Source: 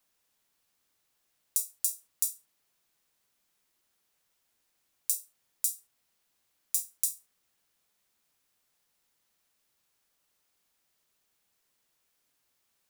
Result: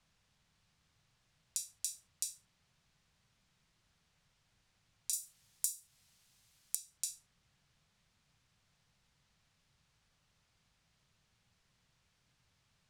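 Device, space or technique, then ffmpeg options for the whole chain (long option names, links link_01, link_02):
jukebox: -filter_complex "[0:a]asettb=1/sr,asplit=3[link_01][link_02][link_03];[link_01]atrim=end=5.134[link_04];[link_02]atrim=start=5.13:end=6.75,asetpts=PTS-STARTPTS,afade=type=in:duration=0.004:curve=qsin,afade=type=out:start_time=1.616:duration=0.004:curve=qsin,aemphasis=mode=production:type=75fm[link_05];[link_03]atrim=start=6.746[link_06];[link_04][link_05]acrossfade=duration=0.004:curve1=hsin:curve2=qsin[link_07];[link_07][link_06]acrossfade=duration=0.004:curve1=qsin:curve2=hsin,lowpass=5500,lowshelf=frequency=210:width_type=q:width=1.5:gain=12.5,acompressor=threshold=-37dB:ratio=4,volume=4dB"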